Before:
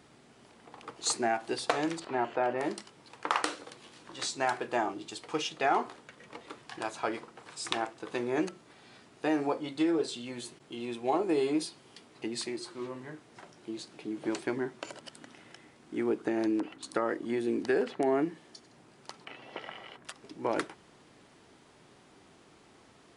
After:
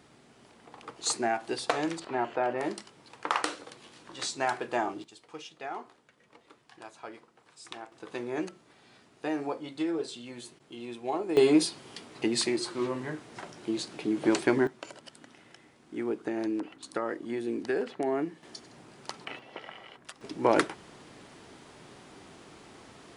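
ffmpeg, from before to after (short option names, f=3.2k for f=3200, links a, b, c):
-af "asetnsamples=n=441:p=0,asendcmd='5.04 volume volume -11dB;7.92 volume volume -3dB;11.37 volume volume 8dB;14.67 volume volume -2dB;18.43 volume volume 6dB;19.39 volume volume -1.5dB;20.21 volume volume 7.5dB',volume=0.5dB"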